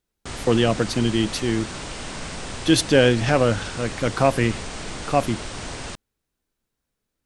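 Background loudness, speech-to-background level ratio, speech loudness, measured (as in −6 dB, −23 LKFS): −33.0 LKFS, 11.5 dB, −21.5 LKFS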